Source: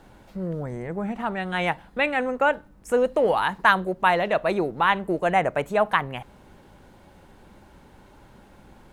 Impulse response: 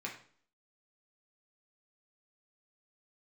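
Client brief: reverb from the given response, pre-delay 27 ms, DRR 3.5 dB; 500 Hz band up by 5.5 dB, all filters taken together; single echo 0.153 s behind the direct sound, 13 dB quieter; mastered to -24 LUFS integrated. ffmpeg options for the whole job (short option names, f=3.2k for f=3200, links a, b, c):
-filter_complex "[0:a]equalizer=f=500:t=o:g=6.5,aecho=1:1:153:0.224,asplit=2[a][b];[1:a]atrim=start_sample=2205,adelay=27[c];[b][c]afir=irnorm=-1:irlink=0,volume=-4.5dB[d];[a][d]amix=inputs=2:normalize=0,volume=-5dB"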